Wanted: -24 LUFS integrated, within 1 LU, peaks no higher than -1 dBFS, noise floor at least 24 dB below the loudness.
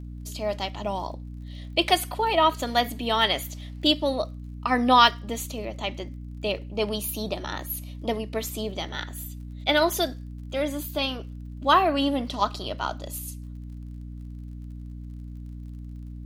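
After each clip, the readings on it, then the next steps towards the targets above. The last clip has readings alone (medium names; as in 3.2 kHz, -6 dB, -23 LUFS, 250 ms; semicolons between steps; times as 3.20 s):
tick rate 41 per s; hum 60 Hz; highest harmonic 300 Hz; hum level -35 dBFS; loudness -25.5 LUFS; peak level -4.0 dBFS; loudness target -24.0 LUFS
-> de-click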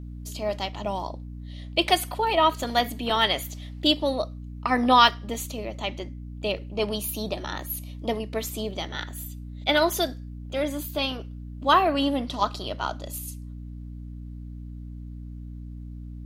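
tick rate 0.18 per s; hum 60 Hz; highest harmonic 300 Hz; hum level -35 dBFS
-> hum notches 60/120/180/240/300 Hz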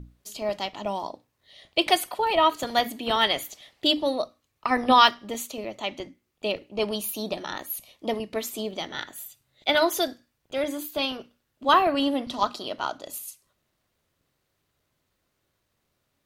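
hum not found; loudness -26.0 LUFS; peak level -4.0 dBFS; loudness target -24.0 LUFS
-> trim +2 dB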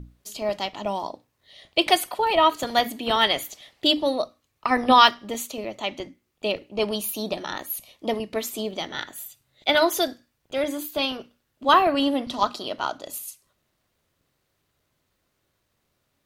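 loudness -24.0 LUFS; peak level -2.0 dBFS; noise floor -74 dBFS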